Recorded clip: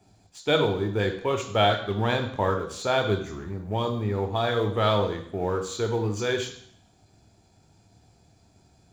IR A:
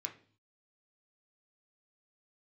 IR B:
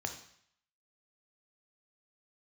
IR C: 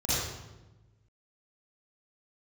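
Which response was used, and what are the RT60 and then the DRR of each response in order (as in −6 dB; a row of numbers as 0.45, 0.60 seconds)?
B; 0.45, 0.65, 1.1 seconds; 2.5, 5.0, −10.5 decibels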